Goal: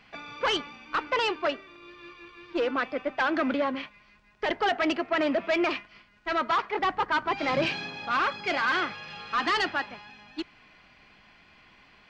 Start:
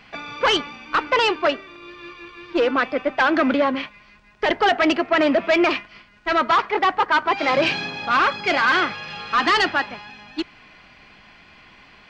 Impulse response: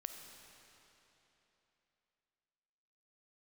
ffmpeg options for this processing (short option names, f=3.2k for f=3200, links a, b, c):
-filter_complex "[0:a]asettb=1/sr,asplit=3[a][b][c];[a]atrim=end=6.794[d];[b]atrim=start=6.79:end=7.66,asetpts=PTS-STARTPTS,afade=t=in:d=0.004:c=qsin,afade=t=out:st=0.866:d=0.004:c=qsin,bass=f=250:g=9,treble=f=4k:g=1[e];[c]atrim=start=7.656[f];[d][e]acrossfade=d=0.004:c1=hsin:c2=qsin[g];[g][f]acrossfade=d=0.004:c1=qsin:c2=hsin,volume=-8dB"